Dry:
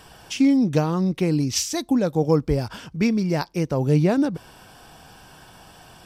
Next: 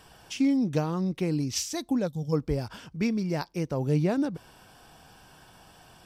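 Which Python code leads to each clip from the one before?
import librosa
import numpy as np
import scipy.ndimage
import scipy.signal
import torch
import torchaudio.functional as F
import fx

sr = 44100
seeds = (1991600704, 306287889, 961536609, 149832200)

y = fx.spec_box(x, sr, start_s=2.07, length_s=0.26, low_hz=260.0, high_hz=2900.0, gain_db=-15)
y = y * librosa.db_to_amplitude(-6.5)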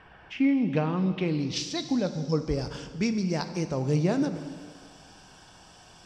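y = fx.rev_plate(x, sr, seeds[0], rt60_s=1.9, hf_ratio=0.95, predelay_ms=0, drr_db=8.5)
y = fx.filter_sweep_lowpass(y, sr, from_hz=2000.0, to_hz=6600.0, start_s=0.3, end_s=2.76, q=2.1)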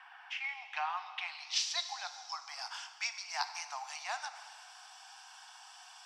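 y = scipy.signal.sosfilt(scipy.signal.butter(16, 730.0, 'highpass', fs=sr, output='sos'), x)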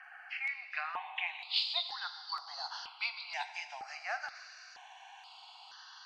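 y = fx.freq_compress(x, sr, knee_hz=3300.0, ratio=1.5)
y = fx.phaser_held(y, sr, hz=2.1, low_hz=970.0, high_hz=8000.0)
y = y * librosa.db_to_amplitude(4.5)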